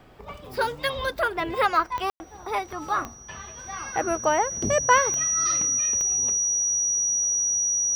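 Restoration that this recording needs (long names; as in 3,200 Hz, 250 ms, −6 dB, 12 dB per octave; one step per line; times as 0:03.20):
click removal
notch filter 5,800 Hz, Q 30
ambience match 0:02.10–0:02.20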